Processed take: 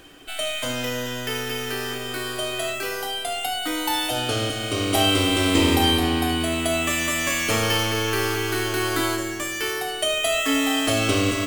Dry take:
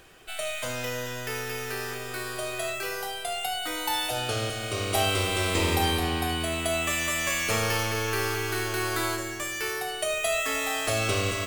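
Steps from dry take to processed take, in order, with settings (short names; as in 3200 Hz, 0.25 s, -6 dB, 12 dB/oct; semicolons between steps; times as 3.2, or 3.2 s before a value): small resonant body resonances 280/3100 Hz, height 15 dB, ringing for 90 ms; gain +3.5 dB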